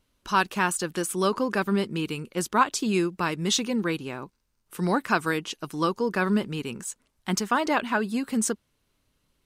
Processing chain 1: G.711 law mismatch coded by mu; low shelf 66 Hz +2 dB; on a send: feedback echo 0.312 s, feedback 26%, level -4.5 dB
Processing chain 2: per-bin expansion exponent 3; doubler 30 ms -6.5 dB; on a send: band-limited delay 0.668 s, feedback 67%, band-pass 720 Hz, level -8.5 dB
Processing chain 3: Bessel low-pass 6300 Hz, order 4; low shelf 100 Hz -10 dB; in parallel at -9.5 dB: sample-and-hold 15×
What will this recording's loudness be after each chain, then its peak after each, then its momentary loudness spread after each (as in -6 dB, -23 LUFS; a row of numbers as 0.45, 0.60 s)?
-25.0, -32.0, -26.0 LUFS; -8.0, -10.5, -6.0 dBFS; 9, 14, 12 LU